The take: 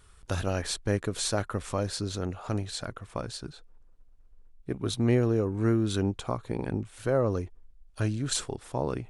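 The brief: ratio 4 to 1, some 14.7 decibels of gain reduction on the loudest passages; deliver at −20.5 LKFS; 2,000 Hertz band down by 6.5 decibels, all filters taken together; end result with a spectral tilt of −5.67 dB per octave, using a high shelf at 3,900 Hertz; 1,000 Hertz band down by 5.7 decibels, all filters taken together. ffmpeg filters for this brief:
ffmpeg -i in.wav -af "equalizer=frequency=1000:width_type=o:gain=-6,equalizer=frequency=2000:width_type=o:gain=-4.5,highshelf=frequency=3900:gain=-8,acompressor=threshold=-39dB:ratio=4,volume=22.5dB" out.wav

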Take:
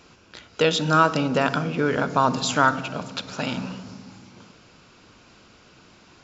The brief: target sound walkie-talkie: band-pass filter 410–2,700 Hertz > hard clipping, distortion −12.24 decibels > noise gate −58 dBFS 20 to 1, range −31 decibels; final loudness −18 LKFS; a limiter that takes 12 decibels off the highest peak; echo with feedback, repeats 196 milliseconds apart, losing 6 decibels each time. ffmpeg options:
ffmpeg -i in.wav -af "alimiter=limit=-16dB:level=0:latency=1,highpass=410,lowpass=2700,aecho=1:1:196|392|588|784|980|1176:0.501|0.251|0.125|0.0626|0.0313|0.0157,asoftclip=type=hard:threshold=-24dB,agate=range=-31dB:threshold=-58dB:ratio=20,volume=13dB" out.wav

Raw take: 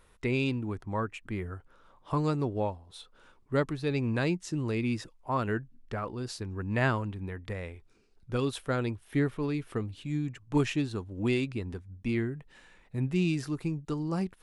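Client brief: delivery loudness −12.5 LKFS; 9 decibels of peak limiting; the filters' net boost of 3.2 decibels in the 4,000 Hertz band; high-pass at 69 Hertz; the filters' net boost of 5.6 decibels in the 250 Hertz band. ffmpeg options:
ffmpeg -i in.wav -af "highpass=69,equalizer=frequency=250:width_type=o:gain=7,equalizer=frequency=4000:width_type=o:gain=4,volume=19.5dB,alimiter=limit=-1.5dB:level=0:latency=1" out.wav

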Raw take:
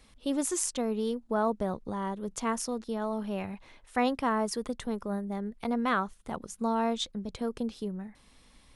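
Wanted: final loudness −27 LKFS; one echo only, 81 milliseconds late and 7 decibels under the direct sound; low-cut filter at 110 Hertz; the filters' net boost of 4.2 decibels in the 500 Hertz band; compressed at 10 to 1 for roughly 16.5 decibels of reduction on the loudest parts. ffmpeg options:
ffmpeg -i in.wav -af "highpass=110,equalizer=frequency=500:width_type=o:gain=5,acompressor=threshold=-37dB:ratio=10,aecho=1:1:81:0.447,volume=14.5dB" out.wav

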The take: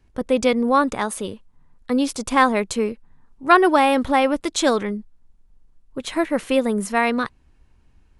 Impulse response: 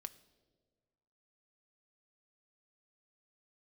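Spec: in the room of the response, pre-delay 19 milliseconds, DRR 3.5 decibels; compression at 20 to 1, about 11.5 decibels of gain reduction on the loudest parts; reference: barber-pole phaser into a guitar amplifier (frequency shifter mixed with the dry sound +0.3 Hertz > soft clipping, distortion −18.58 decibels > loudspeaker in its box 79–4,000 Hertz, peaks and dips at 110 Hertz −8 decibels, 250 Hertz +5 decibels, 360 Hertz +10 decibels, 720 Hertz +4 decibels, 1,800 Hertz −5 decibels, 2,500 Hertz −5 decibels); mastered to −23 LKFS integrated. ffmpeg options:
-filter_complex "[0:a]acompressor=threshold=-19dB:ratio=20,asplit=2[link_01][link_02];[1:a]atrim=start_sample=2205,adelay=19[link_03];[link_02][link_03]afir=irnorm=-1:irlink=0,volume=1dB[link_04];[link_01][link_04]amix=inputs=2:normalize=0,asplit=2[link_05][link_06];[link_06]afreqshift=0.3[link_07];[link_05][link_07]amix=inputs=2:normalize=1,asoftclip=threshold=-17dB,highpass=79,equalizer=frequency=110:width_type=q:width=4:gain=-8,equalizer=frequency=250:width_type=q:width=4:gain=5,equalizer=frequency=360:width_type=q:width=4:gain=10,equalizer=frequency=720:width_type=q:width=4:gain=4,equalizer=frequency=1800:width_type=q:width=4:gain=-5,equalizer=frequency=2500:width_type=q:width=4:gain=-5,lowpass=frequency=4000:width=0.5412,lowpass=frequency=4000:width=1.3066,volume=2dB"

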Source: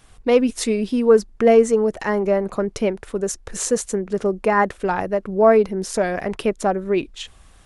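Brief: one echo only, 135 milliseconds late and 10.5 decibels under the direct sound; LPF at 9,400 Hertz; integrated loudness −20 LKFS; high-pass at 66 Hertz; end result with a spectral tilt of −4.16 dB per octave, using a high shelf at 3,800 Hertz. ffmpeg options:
ffmpeg -i in.wav -af "highpass=66,lowpass=9400,highshelf=frequency=3800:gain=5.5,aecho=1:1:135:0.299,volume=-0.5dB" out.wav

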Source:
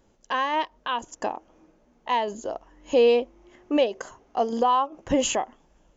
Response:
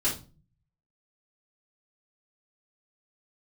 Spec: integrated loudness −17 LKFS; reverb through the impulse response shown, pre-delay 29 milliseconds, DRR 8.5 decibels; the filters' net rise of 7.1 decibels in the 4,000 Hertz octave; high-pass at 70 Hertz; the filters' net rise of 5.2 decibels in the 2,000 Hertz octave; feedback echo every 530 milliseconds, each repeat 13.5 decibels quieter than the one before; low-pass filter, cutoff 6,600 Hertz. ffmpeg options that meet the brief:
-filter_complex "[0:a]highpass=70,lowpass=6600,equalizer=frequency=2000:width_type=o:gain=4,equalizer=frequency=4000:width_type=o:gain=9,aecho=1:1:530|1060:0.211|0.0444,asplit=2[link_01][link_02];[1:a]atrim=start_sample=2205,adelay=29[link_03];[link_02][link_03]afir=irnorm=-1:irlink=0,volume=-17dB[link_04];[link_01][link_04]amix=inputs=2:normalize=0,volume=6dB"

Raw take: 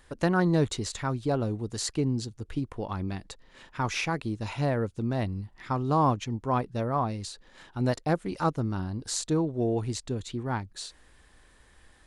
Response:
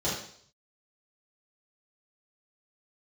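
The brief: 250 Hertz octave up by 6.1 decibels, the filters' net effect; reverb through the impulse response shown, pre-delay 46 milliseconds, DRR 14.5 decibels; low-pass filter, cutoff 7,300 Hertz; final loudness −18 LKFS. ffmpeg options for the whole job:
-filter_complex "[0:a]lowpass=7300,equalizer=frequency=250:width_type=o:gain=8,asplit=2[link_01][link_02];[1:a]atrim=start_sample=2205,adelay=46[link_03];[link_02][link_03]afir=irnorm=-1:irlink=0,volume=-24dB[link_04];[link_01][link_04]amix=inputs=2:normalize=0,volume=7.5dB"

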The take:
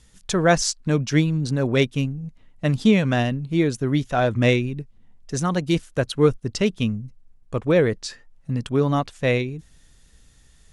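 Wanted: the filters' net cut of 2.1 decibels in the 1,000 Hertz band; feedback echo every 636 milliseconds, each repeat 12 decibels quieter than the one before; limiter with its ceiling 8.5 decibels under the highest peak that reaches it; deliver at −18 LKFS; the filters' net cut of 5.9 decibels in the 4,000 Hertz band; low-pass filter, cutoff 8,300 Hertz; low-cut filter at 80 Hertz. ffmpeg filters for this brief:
ffmpeg -i in.wav -af "highpass=80,lowpass=8300,equalizer=frequency=1000:width_type=o:gain=-3,equalizer=frequency=4000:width_type=o:gain=-7.5,alimiter=limit=-14.5dB:level=0:latency=1,aecho=1:1:636|1272|1908:0.251|0.0628|0.0157,volume=7.5dB" out.wav

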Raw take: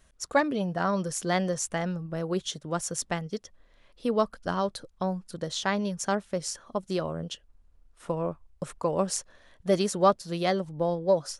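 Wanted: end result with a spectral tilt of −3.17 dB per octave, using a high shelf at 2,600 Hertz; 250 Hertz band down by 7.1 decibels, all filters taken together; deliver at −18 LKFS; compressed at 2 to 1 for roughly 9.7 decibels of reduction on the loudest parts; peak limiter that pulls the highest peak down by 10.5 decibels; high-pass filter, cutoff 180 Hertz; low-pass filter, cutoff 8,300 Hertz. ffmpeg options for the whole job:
ffmpeg -i in.wav -af "highpass=180,lowpass=8300,equalizer=frequency=250:width_type=o:gain=-8.5,highshelf=frequency=2600:gain=5,acompressor=threshold=-36dB:ratio=2,volume=22dB,alimiter=limit=-5.5dB:level=0:latency=1" out.wav

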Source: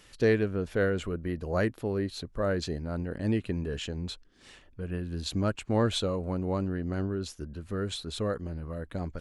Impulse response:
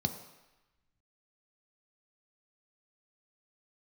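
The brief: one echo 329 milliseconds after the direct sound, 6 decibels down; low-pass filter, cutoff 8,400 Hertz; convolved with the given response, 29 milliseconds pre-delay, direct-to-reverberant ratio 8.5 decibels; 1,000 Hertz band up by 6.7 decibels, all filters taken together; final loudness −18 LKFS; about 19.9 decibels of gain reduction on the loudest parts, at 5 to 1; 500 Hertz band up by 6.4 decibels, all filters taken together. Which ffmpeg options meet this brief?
-filter_complex "[0:a]lowpass=8400,equalizer=frequency=500:width_type=o:gain=6,equalizer=frequency=1000:width_type=o:gain=7,acompressor=threshold=-38dB:ratio=5,aecho=1:1:329:0.501,asplit=2[link_01][link_02];[1:a]atrim=start_sample=2205,adelay=29[link_03];[link_02][link_03]afir=irnorm=-1:irlink=0,volume=-12.5dB[link_04];[link_01][link_04]amix=inputs=2:normalize=0,volume=20dB"

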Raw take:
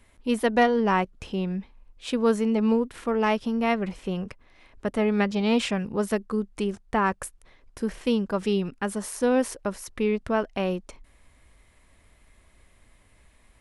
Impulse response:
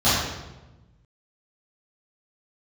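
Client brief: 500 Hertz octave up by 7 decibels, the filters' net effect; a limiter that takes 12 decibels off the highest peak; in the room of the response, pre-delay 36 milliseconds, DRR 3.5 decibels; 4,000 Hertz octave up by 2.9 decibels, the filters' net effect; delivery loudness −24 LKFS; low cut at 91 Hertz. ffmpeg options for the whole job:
-filter_complex "[0:a]highpass=91,equalizer=frequency=500:width_type=o:gain=8,equalizer=frequency=4000:width_type=o:gain=4,alimiter=limit=-15dB:level=0:latency=1,asplit=2[link_01][link_02];[1:a]atrim=start_sample=2205,adelay=36[link_03];[link_02][link_03]afir=irnorm=-1:irlink=0,volume=-24dB[link_04];[link_01][link_04]amix=inputs=2:normalize=0,volume=-1dB"

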